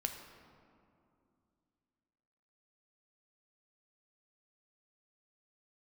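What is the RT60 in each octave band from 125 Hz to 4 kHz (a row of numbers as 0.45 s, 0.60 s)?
3.1 s, 3.2 s, 2.6 s, 2.5 s, 1.7 s, 1.2 s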